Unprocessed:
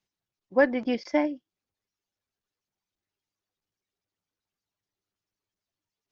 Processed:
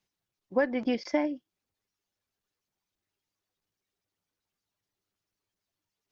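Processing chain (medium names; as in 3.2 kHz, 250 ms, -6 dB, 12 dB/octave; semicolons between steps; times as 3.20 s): compression 3:1, threshold -26 dBFS, peak gain reduction 9 dB; trim +2 dB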